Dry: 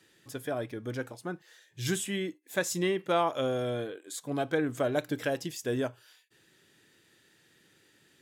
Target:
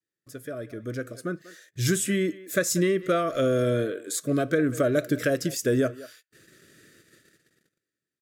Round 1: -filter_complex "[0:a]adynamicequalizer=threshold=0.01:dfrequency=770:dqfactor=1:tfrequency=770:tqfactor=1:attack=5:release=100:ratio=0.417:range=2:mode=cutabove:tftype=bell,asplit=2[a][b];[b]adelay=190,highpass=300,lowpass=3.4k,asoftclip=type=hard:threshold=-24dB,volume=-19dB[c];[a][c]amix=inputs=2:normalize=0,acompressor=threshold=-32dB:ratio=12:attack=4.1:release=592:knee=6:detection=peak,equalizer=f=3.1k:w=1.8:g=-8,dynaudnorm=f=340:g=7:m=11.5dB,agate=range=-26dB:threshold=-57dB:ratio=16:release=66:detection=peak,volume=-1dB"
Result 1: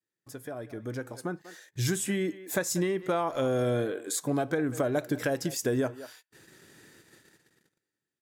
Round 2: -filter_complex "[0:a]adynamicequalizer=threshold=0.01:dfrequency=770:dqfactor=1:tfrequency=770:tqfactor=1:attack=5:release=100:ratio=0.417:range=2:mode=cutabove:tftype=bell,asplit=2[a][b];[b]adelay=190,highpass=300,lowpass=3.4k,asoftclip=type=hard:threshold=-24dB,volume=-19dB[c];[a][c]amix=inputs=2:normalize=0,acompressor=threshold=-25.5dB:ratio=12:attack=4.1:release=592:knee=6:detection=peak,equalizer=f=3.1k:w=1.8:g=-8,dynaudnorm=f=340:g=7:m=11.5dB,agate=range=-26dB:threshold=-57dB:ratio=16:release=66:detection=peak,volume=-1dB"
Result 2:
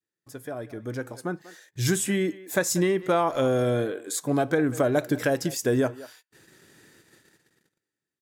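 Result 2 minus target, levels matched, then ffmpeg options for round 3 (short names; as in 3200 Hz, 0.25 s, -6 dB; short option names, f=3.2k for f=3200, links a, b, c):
1000 Hz band +4.0 dB
-filter_complex "[0:a]adynamicequalizer=threshold=0.01:dfrequency=770:dqfactor=1:tfrequency=770:tqfactor=1:attack=5:release=100:ratio=0.417:range=2:mode=cutabove:tftype=bell,asplit=2[a][b];[b]adelay=190,highpass=300,lowpass=3.4k,asoftclip=type=hard:threshold=-24dB,volume=-19dB[c];[a][c]amix=inputs=2:normalize=0,acompressor=threshold=-25.5dB:ratio=12:attack=4.1:release=592:knee=6:detection=peak,asuperstop=centerf=870:order=12:qfactor=2,equalizer=f=3.1k:w=1.8:g=-8,dynaudnorm=f=340:g=7:m=11.5dB,agate=range=-26dB:threshold=-57dB:ratio=16:release=66:detection=peak,volume=-1dB"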